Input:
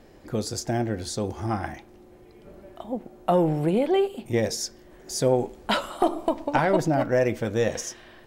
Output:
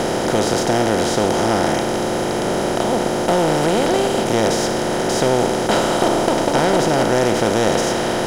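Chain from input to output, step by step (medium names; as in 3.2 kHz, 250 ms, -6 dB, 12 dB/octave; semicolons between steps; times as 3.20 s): spectral levelling over time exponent 0.2; whistle 11 kHz -41 dBFS; waveshaping leveller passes 1; trim -5 dB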